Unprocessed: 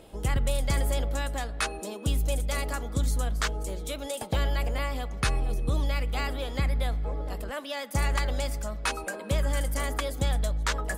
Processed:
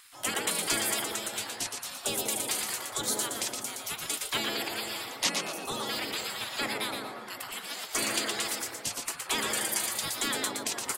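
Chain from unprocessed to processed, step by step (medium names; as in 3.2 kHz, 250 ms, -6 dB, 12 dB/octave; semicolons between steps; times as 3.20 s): high-pass 61 Hz 12 dB/octave; spectral gate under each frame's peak -20 dB weak; frequency-shifting echo 118 ms, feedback 31%, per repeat +140 Hz, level -5 dB; trim +8.5 dB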